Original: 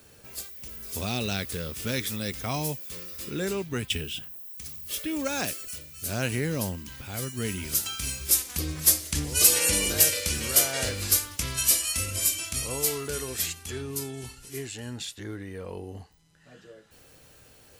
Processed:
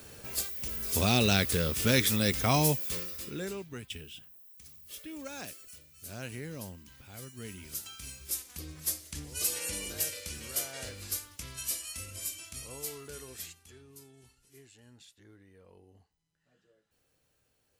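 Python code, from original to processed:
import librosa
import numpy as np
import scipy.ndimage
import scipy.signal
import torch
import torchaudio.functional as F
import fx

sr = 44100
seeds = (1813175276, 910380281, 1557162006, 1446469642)

y = fx.gain(x, sr, db=fx.line((2.94, 4.5), (3.3, -5.5), (3.83, -12.5), (13.35, -12.5), (13.8, -20.0)))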